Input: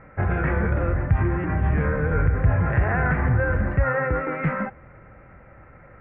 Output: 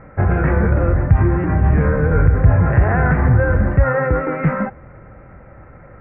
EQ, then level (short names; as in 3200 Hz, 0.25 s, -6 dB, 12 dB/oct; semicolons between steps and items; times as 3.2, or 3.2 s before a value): LPF 1200 Hz 6 dB/oct; +7.5 dB